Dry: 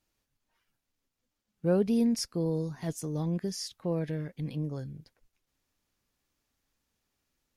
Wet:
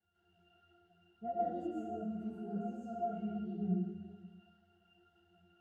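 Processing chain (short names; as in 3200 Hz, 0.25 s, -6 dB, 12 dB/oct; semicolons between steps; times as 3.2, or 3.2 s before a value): bell 680 Hz -14 dB 0.39 oct; speed mistake 33 rpm record played at 45 rpm; crackle 520/s -44 dBFS; octave resonator F, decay 0.64 s; reverb RT60 1.5 s, pre-delay 84 ms, DRR -9.5 dB; ensemble effect; gain +9.5 dB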